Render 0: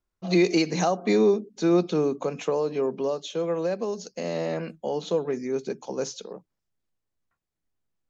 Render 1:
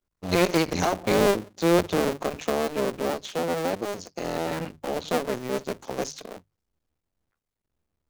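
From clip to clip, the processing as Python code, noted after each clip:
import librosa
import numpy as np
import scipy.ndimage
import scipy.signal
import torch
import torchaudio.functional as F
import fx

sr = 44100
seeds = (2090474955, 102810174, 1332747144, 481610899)

y = fx.cycle_switch(x, sr, every=2, mode='muted')
y = fx.hum_notches(y, sr, base_hz=50, count=3)
y = y * librosa.db_to_amplitude(2.5)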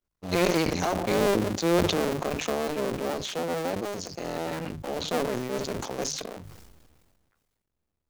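y = fx.sustainer(x, sr, db_per_s=33.0)
y = y * librosa.db_to_amplitude(-3.5)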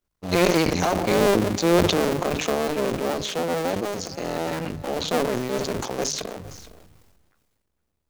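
y = x + 10.0 ** (-18.0 / 20.0) * np.pad(x, (int(461 * sr / 1000.0), 0))[:len(x)]
y = y * librosa.db_to_amplitude(4.5)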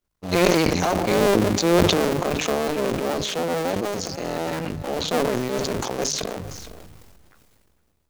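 y = fx.sustainer(x, sr, db_per_s=23.0)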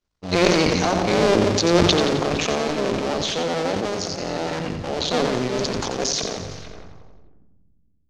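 y = fx.filter_sweep_lowpass(x, sr, from_hz=5400.0, to_hz=200.0, start_s=6.44, end_s=7.48, q=1.4)
y = fx.echo_feedback(y, sr, ms=88, feedback_pct=56, wet_db=-8.0)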